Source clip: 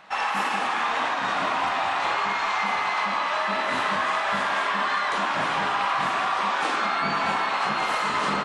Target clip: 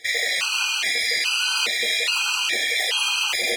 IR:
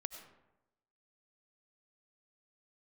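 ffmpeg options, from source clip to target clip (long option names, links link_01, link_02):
-af "asetrate=104517,aresample=44100,bandreject=frequency=1600:width=6.7,afftfilt=real='re*gt(sin(2*PI*1.2*pts/sr)*(1-2*mod(floor(b*sr/1024/810),2)),0)':imag='im*gt(sin(2*PI*1.2*pts/sr)*(1-2*mod(floor(b*sr/1024/810),2)),0)':win_size=1024:overlap=0.75,volume=5.5dB"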